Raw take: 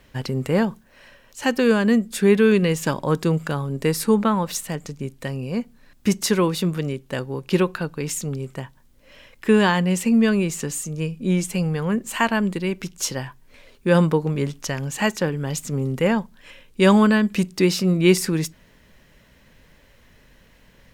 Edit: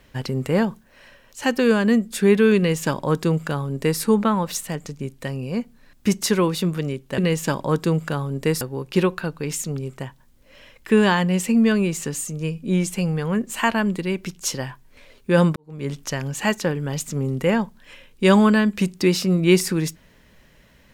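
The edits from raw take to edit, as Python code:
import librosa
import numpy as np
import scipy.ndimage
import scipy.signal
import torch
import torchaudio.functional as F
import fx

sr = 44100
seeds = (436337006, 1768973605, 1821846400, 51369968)

y = fx.edit(x, sr, fx.duplicate(start_s=2.57, length_s=1.43, to_s=7.18),
    fx.fade_in_span(start_s=14.13, length_s=0.37, curve='qua'), tone=tone)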